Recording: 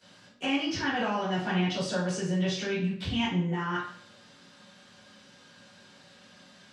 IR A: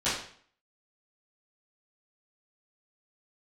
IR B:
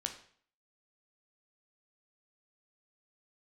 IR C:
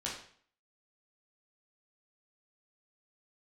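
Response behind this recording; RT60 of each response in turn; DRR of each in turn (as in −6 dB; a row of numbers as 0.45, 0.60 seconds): A; 0.55, 0.55, 0.55 seconds; −14.5, 4.5, −5.5 decibels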